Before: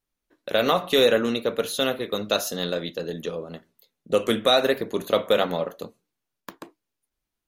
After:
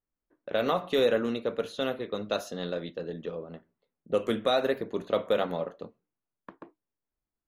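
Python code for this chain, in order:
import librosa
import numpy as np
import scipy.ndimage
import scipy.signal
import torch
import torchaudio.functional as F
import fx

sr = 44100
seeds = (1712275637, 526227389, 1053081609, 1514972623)

y = fx.env_lowpass(x, sr, base_hz=1800.0, full_db=-19.0)
y = fx.high_shelf(y, sr, hz=2900.0, db=-10.0)
y = y * 10.0 ** (-5.0 / 20.0)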